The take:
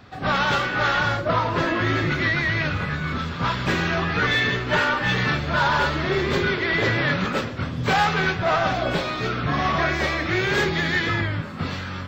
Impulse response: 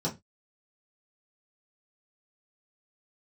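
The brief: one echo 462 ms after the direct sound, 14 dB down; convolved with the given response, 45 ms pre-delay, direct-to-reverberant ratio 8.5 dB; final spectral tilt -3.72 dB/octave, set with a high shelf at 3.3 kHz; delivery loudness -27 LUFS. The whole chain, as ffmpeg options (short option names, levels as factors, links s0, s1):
-filter_complex "[0:a]highshelf=f=3300:g=5.5,aecho=1:1:462:0.2,asplit=2[s0][s1];[1:a]atrim=start_sample=2205,adelay=45[s2];[s1][s2]afir=irnorm=-1:irlink=0,volume=0.178[s3];[s0][s3]amix=inputs=2:normalize=0,volume=0.422"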